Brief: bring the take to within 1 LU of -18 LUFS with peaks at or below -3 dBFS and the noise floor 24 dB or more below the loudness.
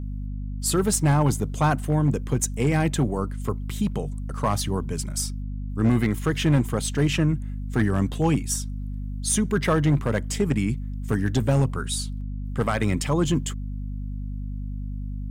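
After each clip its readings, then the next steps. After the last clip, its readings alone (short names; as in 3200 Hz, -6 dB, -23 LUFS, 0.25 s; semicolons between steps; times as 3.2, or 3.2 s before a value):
clipped 0.6%; flat tops at -13.5 dBFS; hum 50 Hz; harmonics up to 250 Hz; hum level -28 dBFS; loudness -25.0 LUFS; peak -13.5 dBFS; loudness target -18.0 LUFS
-> clip repair -13.5 dBFS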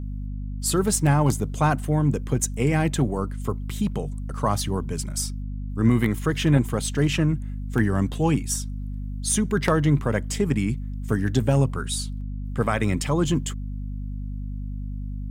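clipped 0.0%; hum 50 Hz; harmonics up to 250 Hz; hum level -28 dBFS
-> de-hum 50 Hz, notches 5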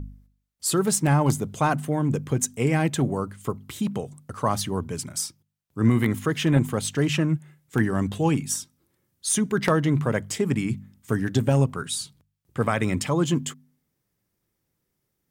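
hum none; loudness -25.0 LUFS; peak -5.0 dBFS; loudness target -18.0 LUFS
-> gain +7 dB; limiter -3 dBFS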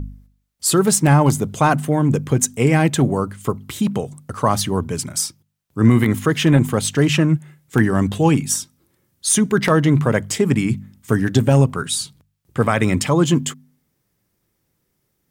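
loudness -18.0 LUFS; peak -3.0 dBFS; noise floor -71 dBFS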